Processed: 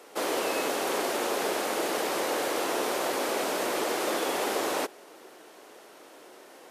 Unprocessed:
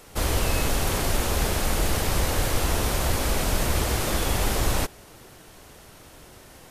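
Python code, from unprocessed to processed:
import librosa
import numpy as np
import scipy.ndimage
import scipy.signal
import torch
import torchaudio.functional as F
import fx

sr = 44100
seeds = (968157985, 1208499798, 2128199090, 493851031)

y = scipy.signal.sosfilt(scipy.signal.butter(4, 330.0, 'highpass', fs=sr, output='sos'), x)
y = fx.tilt_eq(y, sr, slope=-2.0)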